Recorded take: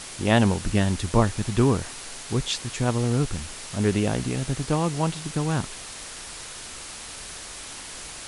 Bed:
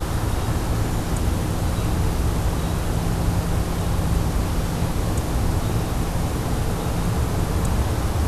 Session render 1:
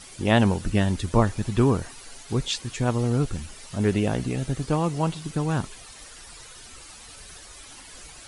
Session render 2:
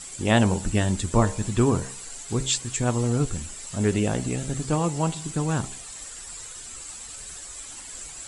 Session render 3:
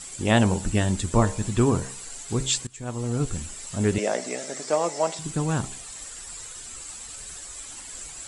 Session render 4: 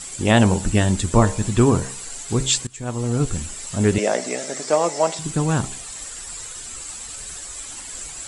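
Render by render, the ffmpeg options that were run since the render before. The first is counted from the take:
-af "afftdn=nr=11:nf=-39"
-af "equalizer=f=7.6k:t=o:w=0.31:g=15,bandreject=f=65.86:t=h:w=4,bandreject=f=131.72:t=h:w=4,bandreject=f=197.58:t=h:w=4,bandreject=f=263.44:t=h:w=4,bandreject=f=329.3:t=h:w=4,bandreject=f=395.16:t=h:w=4,bandreject=f=461.02:t=h:w=4,bandreject=f=526.88:t=h:w=4,bandreject=f=592.74:t=h:w=4,bandreject=f=658.6:t=h:w=4,bandreject=f=724.46:t=h:w=4,bandreject=f=790.32:t=h:w=4,bandreject=f=856.18:t=h:w=4,bandreject=f=922.04:t=h:w=4,bandreject=f=987.9:t=h:w=4,bandreject=f=1.05376k:t=h:w=4"
-filter_complex "[0:a]asettb=1/sr,asplit=3[a][b][c];[a]atrim=end=3.984[d];[b]atrim=start=3.98:end=5.19,asetpts=PTS-STARTPTS,afade=t=in:d=0.004:c=qsin,afade=t=out:st=1.206:d=0.004:c=qsin,highpass=f=260:w=0.5412,highpass=f=260:w=1.3066,equalizer=f=290:t=q:w=4:g=-9,equalizer=f=610:t=q:w=4:g=10,equalizer=f=2k:t=q:w=4:g=7,equalizer=f=2.9k:t=q:w=4:g=-4,equalizer=f=5.4k:t=q:w=4:g=8,lowpass=f=9.4k:w=0.5412,lowpass=f=9.4k:w=1.3066[e];[c]atrim=start=5.186[f];[d][e]acrossfade=d=0.004:c1=hsin:c2=qsin[g];[g][f]acrossfade=d=0.004:c1=qsin:c2=hsin,asplit=2[h][i];[h]atrim=end=2.67,asetpts=PTS-STARTPTS,afade=t=out:st=2.666:d=0.004:c=hsin:silence=0.0749894[j];[i]atrim=start=2.67,asetpts=PTS-STARTPTS,afade=t=in:d=0.68:silence=0.0749894[k];[j][k]concat=n=2:v=0:a=1"
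-af "volume=5dB,alimiter=limit=-2dB:level=0:latency=1"

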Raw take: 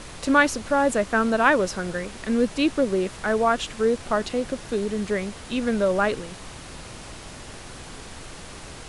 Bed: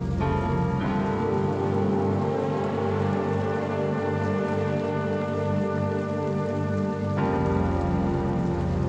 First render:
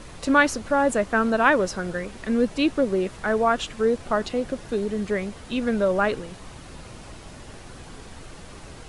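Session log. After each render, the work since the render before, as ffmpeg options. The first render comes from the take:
-af "afftdn=nr=6:nf=-41"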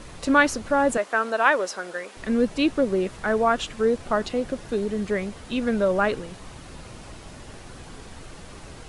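-filter_complex "[0:a]asettb=1/sr,asplit=3[a][b][c];[a]atrim=end=0.974[d];[b]atrim=start=0.97:end=2.17,asetpts=PTS-STARTPTS,afade=t=in:d=0.004:c=qsin,afade=t=out:st=1.196:d=0.004:c=qsin,highpass=480[e];[c]atrim=start=2.166[f];[d][e]acrossfade=d=0.004:c1=hsin:c2=qsin[g];[g][f]acrossfade=d=0.004:c1=qsin:c2=hsin"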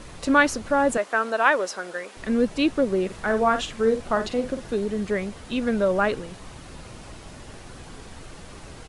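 -filter_complex "[0:a]asplit=3[a][b][c];[a]afade=t=out:st=3.09:d=0.02[d];[b]asplit=2[e][f];[f]adelay=49,volume=-9dB[g];[e][g]amix=inputs=2:normalize=0,afade=t=in:st=3.09:d=0.02,afade=t=out:st=4.72:d=0.02[h];[c]afade=t=in:st=4.72:d=0.02[i];[d][h][i]amix=inputs=3:normalize=0"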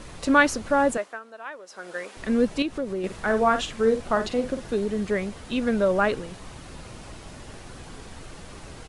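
-filter_complex "[0:a]asettb=1/sr,asplit=3[a][b][c];[a]atrim=end=2.624[d];[b]atrim=start=2.62:end=3.04,asetpts=PTS-STARTPTS,afade=t=in:d=0.004:c=qsin,afade=t=out:st=0.416:d=0.004:c=qsin,acompressor=threshold=-31dB:ratio=2:attack=3.2:release=140:knee=1:detection=peak[e];[c]atrim=start=3.036[f];[d][e]acrossfade=d=0.004:c1=hsin:c2=qsin[g];[g][f]acrossfade=d=0.004:c1=qsin:c2=hsin,asplit=3[h][i][j];[h]atrim=end=1.2,asetpts=PTS-STARTPTS,afade=t=out:st=0.84:d=0.36:silence=0.11885[k];[i]atrim=start=1.2:end=1.66,asetpts=PTS-STARTPTS,volume=-18.5dB[l];[j]atrim=start=1.66,asetpts=PTS-STARTPTS,afade=t=in:d=0.36:silence=0.11885[m];[k][l][m]concat=n=3:v=0:a=1"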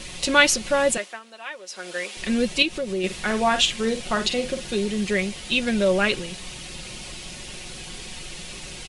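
-af "highshelf=f=1.9k:t=q:w=1.5:g=9.5,aecho=1:1:5.5:0.52"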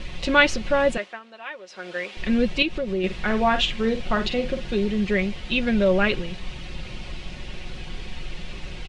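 -af "lowpass=3.2k,lowshelf=f=100:g=11"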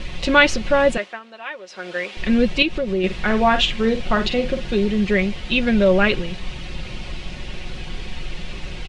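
-af "volume=4dB,alimiter=limit=-2dB:level=0:latency=1"

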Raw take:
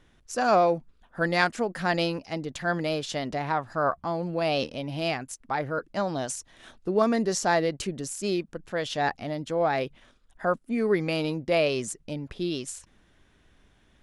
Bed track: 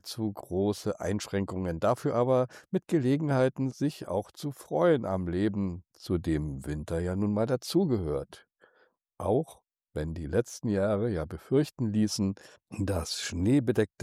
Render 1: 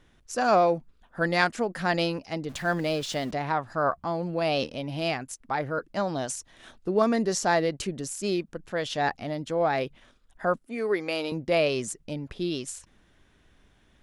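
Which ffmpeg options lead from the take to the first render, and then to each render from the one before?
-filter_complex "[0:a]asettb=1/sr,asplit=3[a][b][c];[a]atrim=end=2.494[d];[b]atrim=start=2.49:end=3.31,asetpts=PTS-STARTPTS,afade=t=in:d=0.004:c=qsin,afade=t=out:st=0.816:d=0.004:c=qsin,aeval=exprs='val(0)+0.5*0.00841*sgn(val(0))':c=same[e];[c]atrim=start=3.306[f];[d][e]acrossfade=d=0.004:c1=hsin:c2=qsin[g];[g][f]acrossfade=d=0.004:c1=qsin:c2=hsin,asettb=1/sr,asplit=3[h][i][j];[h]atrim=end=10.674[k];[i]atrim=start=10.67:end=11.32,asetpts=PTS-STARTPTS,afade=t=in:d=0.004:c=qsin,afade=t=out:st=0.646:d=0.004:c=qsin,highpass=360[l];[j]atrim=start=11.316[m];[k][l]acrossfade=d=0.004:c1=hsin:c2=qsin[n];[n][m]acrossfade=d=0.004:c1=qsin:c2=hsin"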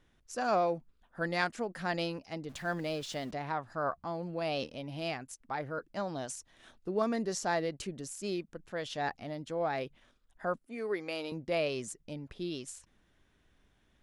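-af "volume=-8dB"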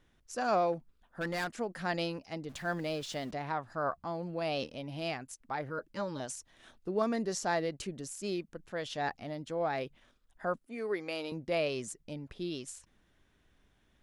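-filter_complex "[0:a]asplit=3[a][b][c];[a]afade=t=out:st=0.72:d=0.02[d];[b]asoftclip=type=hard:threshold=-30.5dB,afade=t=in:st=0.72:d=0.02,afade=t=out:st=1.52:d=0.02[e];[c]afade=t=in:st=1.52:d=0.02[f];[d][e][f]amix=inputs=3:normalize=0,asettb=1/sr,asplit=3[g][h][i];[g]atrim=end=5.694[j];[h]atrim=start=5.69:end=6.2,asetpts=PTS-STARTPTS,afade=t=in:d=0.004:c=qsin,afade=t=out:st=0.506:d=0.004:c=qsin,asuperstop=centerf=710:order=20:qfactor=4[k];[i]atrim=start=6.196[l];[j][k]acrossfade=d=0.004:c1=hsin:c2=qsin[m];[m][l]acrossfade=d=0.004:c1=qsin:c2=hsin"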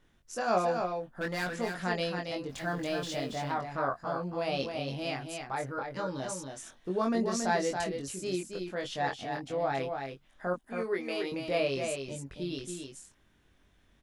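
-filter_complex "[0:a]asplit=2[a][b];[b]adelay=22,volume=-3dB[c];[a][c]amix=inputs=2:normalize=0,aecho=1:1:277:0.531"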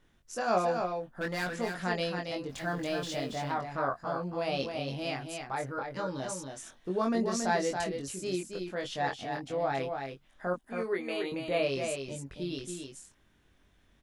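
-filter_complex "[0:a]asettb=1/sr,asplit=3[a][b][c];[a]atrim=end=10.934[d];[b]atrim=start=10.93:end=11.63,asetpts=PTS-STARTPTS,afade=t=in:d=0.004:c=qsin,afade=t=out:st=0.696:d=0.004:c=qsin,asuperstop=centerf=5400:order=20:qfactor=3.3[e];[c]atrim=start=11.626[f];[d][e]acrossfade=d=0.004:c1=hsin:c2=qsin[g];[g][f]acrossfade=d=0.004:c1=qsin:c2=hsin"

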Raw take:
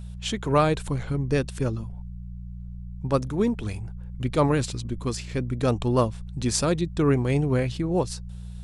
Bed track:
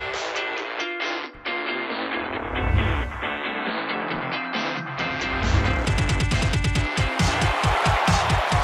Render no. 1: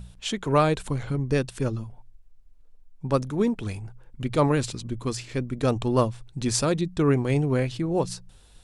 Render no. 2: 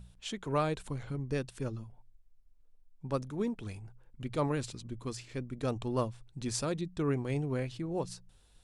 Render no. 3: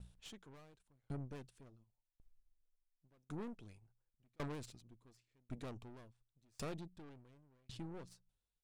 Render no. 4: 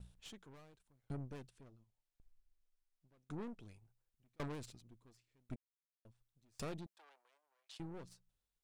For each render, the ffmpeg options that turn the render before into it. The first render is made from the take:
-af "bandreject=f=60:t=h:w=4,bandreject=f=120:t=h:w=4,bandreject=f=180:t=h:w=4"
-af "volume=-10dB"
-af "aeval=exprs='(tanh(79.4*val(0)+0.6)-tanh(0.6))/79.4':c=same,aeval=exprs='val(0)*pow(10,-36*if(lt(mod(0.91*n/s,1),2*abs(0.91)/1000),1-mod(0.91*n/s,1)/(2*abs(0.91)/1000),(mod(0.91*n/s,1)-2*abs(0.91)/1000)/(1-2*abs(0.91)/1000))/20)':c=same"
-filter_complex "[0:a]asettb=1/sr,asplit=3[a][b][c];[a]atrim=end=1.494[d];[b]atrim=start=1.49:end=3.6,asetpts=PTS-STARTPTS,afade=t=in:d=0.004:c=qsin,afade=t=out:st=2.106:d=0.004:c=qsin,highshelf=f=11k:g=-8.5[e];[c]atrim=start=3.596[f];[d][e]acrossfade=d=0.004:c1=hsin:c2=qsin[g];[g][f]acrossfade=d=0.004:c1=qsin:c2=hsin,asettb=1/sr,asplit=3[h][i][j];[h]atrim=end=6.864[k];[i]atrim=start=6.86:end=7.8,asetpts=PTS-STARTPTS,afade=t=in:d=0.004:c=qsin,afade=t=out:st=0.936:d=0.004:c=qsin,highpass=f=640:w=0.5412,highpass=f=640:w=1.3066[l];[j]atrim=start=7.796[m];[k][l]acrossfade=d=0.004:c1=hsin:c2=qsin[n];[n][m]acrossfade=d=0.004:c1=qsin:c2=hsin,asplit=3[o][p][q];[o]atrim=end=5.56,asetpts=PTS-STARTPTS,afade=t=out:st=5.556:d=0.004:c=hsin[r];[p]atrim=start=5.56:end=6.05,asetpts=PTS-STARTPTS,volume=0[s];[q]atrim=start=6.05,asetpts=PTS-STARTPTS,afade=t=in:d=0.004:c=hsin[t];[r][s][t]concat=n=3:v=0:a=1"

